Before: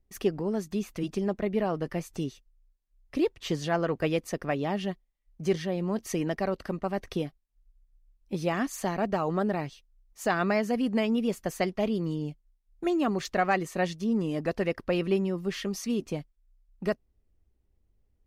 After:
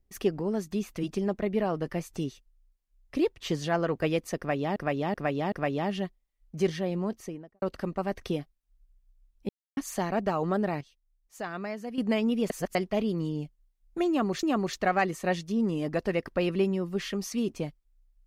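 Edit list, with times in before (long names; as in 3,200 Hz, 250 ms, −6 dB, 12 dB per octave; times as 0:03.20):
0:04.38–0:04.76: repeat, 4 plays
0:05.75–0:06.48: fade out and dull
0:08.35–0:08.63: silence
0:09.67–0:10.84: clip gain −9.5 dB
0:11.36–0:11.61: reverse
0:12.95–0:13.29: repeat, 2 plays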